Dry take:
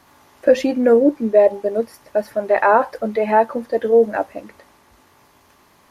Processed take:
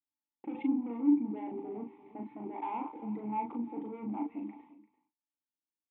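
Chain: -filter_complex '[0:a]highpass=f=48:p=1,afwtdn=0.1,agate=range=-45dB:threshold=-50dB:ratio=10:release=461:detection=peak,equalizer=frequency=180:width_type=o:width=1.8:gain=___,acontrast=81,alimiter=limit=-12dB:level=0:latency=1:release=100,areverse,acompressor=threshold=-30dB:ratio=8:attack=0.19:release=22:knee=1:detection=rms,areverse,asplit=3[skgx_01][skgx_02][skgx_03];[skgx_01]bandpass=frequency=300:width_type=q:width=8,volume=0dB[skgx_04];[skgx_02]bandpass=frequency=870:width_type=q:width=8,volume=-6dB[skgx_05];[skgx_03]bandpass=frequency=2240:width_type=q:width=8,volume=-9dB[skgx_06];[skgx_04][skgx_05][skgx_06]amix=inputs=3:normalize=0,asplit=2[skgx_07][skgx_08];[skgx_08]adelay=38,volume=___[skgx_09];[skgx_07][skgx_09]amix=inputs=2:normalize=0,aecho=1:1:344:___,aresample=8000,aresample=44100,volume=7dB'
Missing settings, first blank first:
8, -4dB, 0.133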